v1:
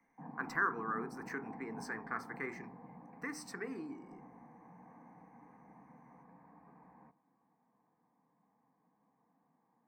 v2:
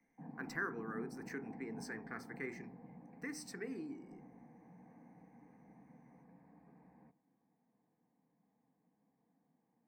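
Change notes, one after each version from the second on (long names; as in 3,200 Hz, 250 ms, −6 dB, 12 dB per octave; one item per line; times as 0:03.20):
master: add parametric band 1,100 Hz −13 dB 0.97 octaves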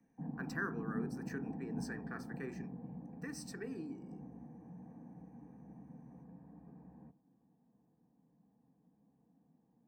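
background: add spectral tilt −3.5 dB per octave
master: add Butterworth band-reject 2,100 Hz, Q 5.7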